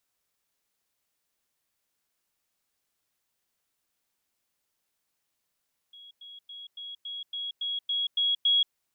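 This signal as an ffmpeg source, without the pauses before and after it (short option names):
-f lavfi -i "aevalsrc='pow(10,(-46.5+3*floor(t/0.28))/20)*sin(2*PI*3320*t)*clip(min(mod(t,0.28),0.18-mod(t,0.28))/0.005,0,1)':d=2.8:s=44100"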